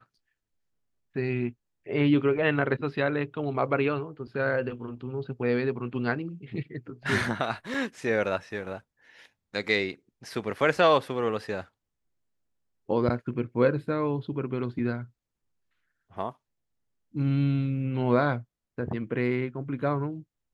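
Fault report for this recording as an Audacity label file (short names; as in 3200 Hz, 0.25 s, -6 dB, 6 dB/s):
7.740000	7.740000	gap 3.1 ms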